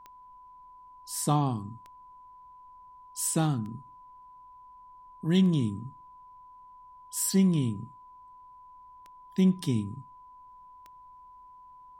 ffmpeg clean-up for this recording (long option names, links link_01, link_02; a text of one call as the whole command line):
ffmpeg -i in.wav -af "adeclick=threshold=4,bandreject=frequency=1000:width=30,agate=range=-21dB:threshold=-44dB" out.wav